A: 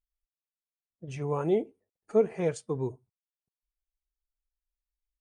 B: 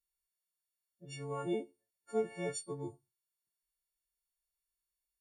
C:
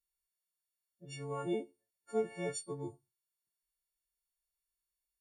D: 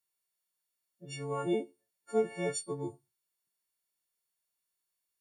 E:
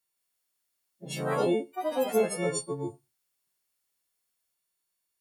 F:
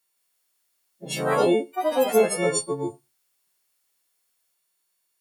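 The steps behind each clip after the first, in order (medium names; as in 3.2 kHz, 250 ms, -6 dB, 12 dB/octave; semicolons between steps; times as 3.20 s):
partials quantised in pitch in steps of 4 st; feedback comb 120 Hz, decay 0.3 s, harmonics all, mix 30%; trim -7 dB
no audible change
high-pass 110 Hz; trim +4.5 dB
ever faster or slower copies 165 ms, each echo +3 st, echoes 3; trim +3.5 dB
bass shelf 140 Hz -11.5 dB; trim +7.5 dB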